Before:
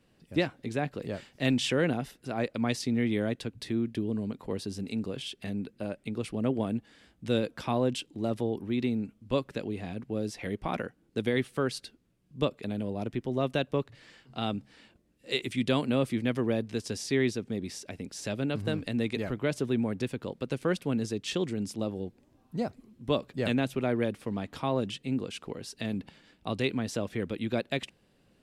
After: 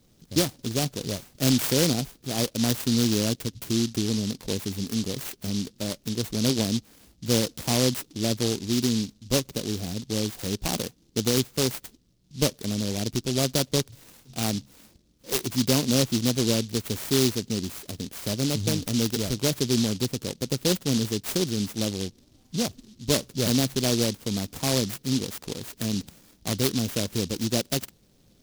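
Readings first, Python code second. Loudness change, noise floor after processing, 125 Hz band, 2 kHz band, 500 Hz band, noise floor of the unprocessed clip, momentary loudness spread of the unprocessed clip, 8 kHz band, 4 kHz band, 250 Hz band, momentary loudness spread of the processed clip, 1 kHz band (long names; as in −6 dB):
+5.5 dB, −61 dBFS, +6.5 dB, +0.5 dB, +2.0 dB, −67 dBFS, 9 LU, +17.0 dB, +10.5 dB, +4.5 dB, 9 LU, +0.5 dB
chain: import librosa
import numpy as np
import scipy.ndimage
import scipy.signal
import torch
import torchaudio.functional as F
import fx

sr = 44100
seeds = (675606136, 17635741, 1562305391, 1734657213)

y = fx.low_shelf(x, sr, hz=130.0, db=6.0)
y = fx.noise_mod_delay(y, sr, seeds[0], noise_hz=4500.0, depth_ms=0.22)
y = F.gain(torch.from_numpy(y), 3.5).numpy()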